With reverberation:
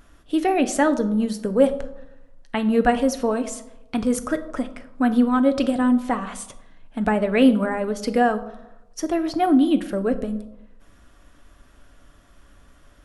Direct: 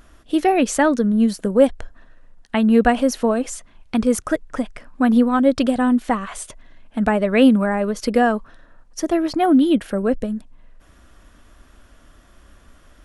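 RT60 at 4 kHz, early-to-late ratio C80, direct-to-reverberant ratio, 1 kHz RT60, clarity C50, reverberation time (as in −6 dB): 0.50 s, 16.5 dB, 8.5 dB, 0.90 s, 14.5 dB, 0.95 s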